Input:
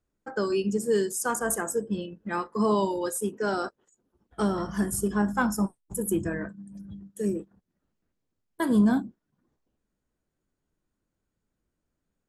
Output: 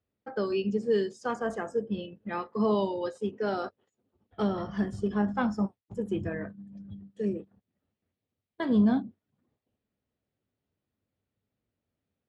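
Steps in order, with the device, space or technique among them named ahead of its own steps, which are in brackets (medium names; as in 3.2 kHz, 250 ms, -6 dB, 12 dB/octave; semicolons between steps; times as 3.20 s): guitar cabinet (cabinet simulation 93–4100 Hz, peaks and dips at 97 Hz +7 dB, 170 Hz -5 dB, 330 Hz -6 dB, 1 kHz -6 dB, 1.5 kHz -7 dB)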